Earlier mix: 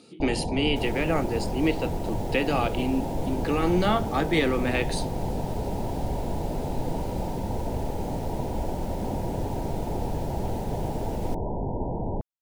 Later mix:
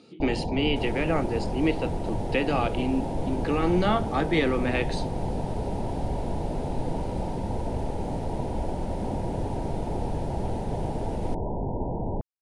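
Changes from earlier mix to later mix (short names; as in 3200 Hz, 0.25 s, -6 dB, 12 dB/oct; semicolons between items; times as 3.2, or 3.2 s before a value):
second sound: add bell 9600 Hz +13.5 dB 0.32 oct; master: add air absorption 90 m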